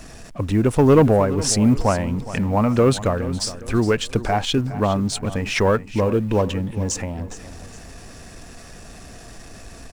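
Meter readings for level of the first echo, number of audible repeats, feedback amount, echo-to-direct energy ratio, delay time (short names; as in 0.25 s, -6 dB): -15.0 dB, 3, 38%, -14.5 dB, 0.414 s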